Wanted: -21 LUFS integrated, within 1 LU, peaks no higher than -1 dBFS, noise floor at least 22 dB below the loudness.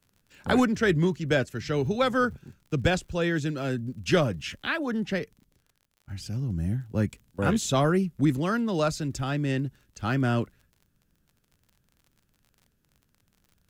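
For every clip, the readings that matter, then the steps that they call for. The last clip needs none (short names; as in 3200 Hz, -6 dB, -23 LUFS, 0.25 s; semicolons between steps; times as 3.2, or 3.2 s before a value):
ticks 42/s; loudness -27.0 LUFS; peak -10.5 dBFS; loudness target -21.0 LUFS
-> de-click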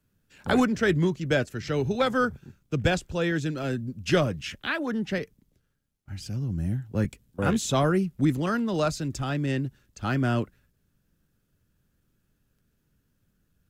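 ticks 0.073/s; loudness -27.0 LUFS; peak -10.5 dBFS; loudness target -21.0 LUFS
-> gain +6 dB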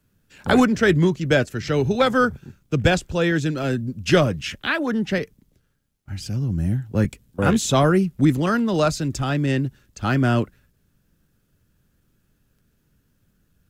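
loudness -21.0 LUFS; peak -4.5 dBFS; noise floor -67 dBFS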